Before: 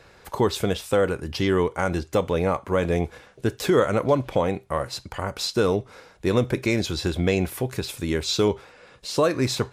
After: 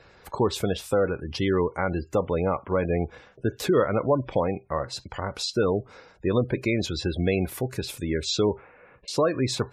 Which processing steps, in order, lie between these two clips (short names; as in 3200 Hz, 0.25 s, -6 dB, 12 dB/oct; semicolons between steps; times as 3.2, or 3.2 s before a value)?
spectral gate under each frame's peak -25 dB strong; 8.49–9.08 Chebyshev low-pass 2400 Hz, order 4; gain -1.5 dB; MP3 80 kbps 32000 Hz